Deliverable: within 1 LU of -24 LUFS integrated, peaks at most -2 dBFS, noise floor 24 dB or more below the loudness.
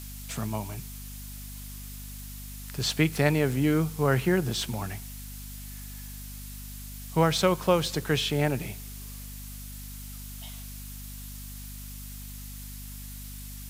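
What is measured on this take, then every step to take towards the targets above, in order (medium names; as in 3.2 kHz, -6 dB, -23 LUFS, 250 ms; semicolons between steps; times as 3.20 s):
hum 50 Hz; highest harmonic 250 Hz; hum level -40 dBFS; noise floor -41 dBFS; noise floor target -52 dBFS; loudness -27.5 LUFS; peak level -7.0 dBFS; loudness target -24.0 LUFS
-> de-hum 50 Hz, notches 5; noise reduction 11 dB, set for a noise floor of -41 dBFS; trim +3.5 dB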